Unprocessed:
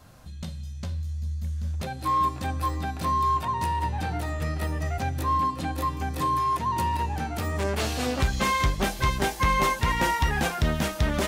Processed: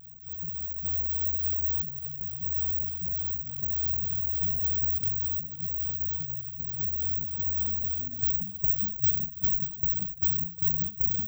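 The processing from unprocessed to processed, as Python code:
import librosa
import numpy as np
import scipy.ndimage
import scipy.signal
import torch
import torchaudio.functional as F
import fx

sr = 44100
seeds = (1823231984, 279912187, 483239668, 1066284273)

y = fx.add_hum(x, sr, base_hz=60, snr_db=23)
y = scipy.signal.sosfilt(scipy.signal.cheby2(4, 70, [720.0, 3700.0], 'bandstop', fs=sr, output='sos'), y)
y = y + 10.0 ** (-21.0 / 20.0) * np.pad(y, (int(1139 * sr / 1000.0), 0))[:len(y)]
y = (np.kron(scipy.signal.resample_poly(y, 1, 2), np.eye(2)[0]) * 2)[:len(y)]
y = fx.over_compress(y, sr, threshold_db=-20.0, ratio=-1.0)
y = fx.spec_gate(y, sr, threshold_db=-15, keep='strong')
y = fx.highpass(y, sr, hz=420.0, slope=6)
y = y + 0.65 * np.pad(y, (int(1.5 * sr / 1000.0), 0))[:len(y)]
y = fx.vibrato_shape(y, sr, shape='saw_down', rate_hz=3.4, depth_cents=100.0)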